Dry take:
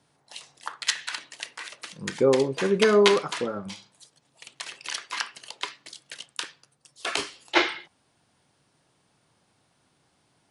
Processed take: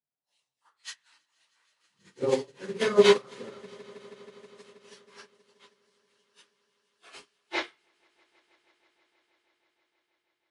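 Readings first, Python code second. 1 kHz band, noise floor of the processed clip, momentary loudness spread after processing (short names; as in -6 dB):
-7.0 dB, -83 dBFS, 24 LU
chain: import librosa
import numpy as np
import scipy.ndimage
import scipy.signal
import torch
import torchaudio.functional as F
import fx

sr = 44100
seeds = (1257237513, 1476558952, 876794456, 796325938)

y = fx.phase_scramble(x, sr, seeds[0], window_ms=100)
y = fx.echo_swell(y, sr, ms=160, loudest=5, wet_db=-15)
y = fx.upward_expand(y, sr, threshold_db=-36.0, expansion=2.5)
y = F.gain(torch.from_numpy(y), 1.0).numpy()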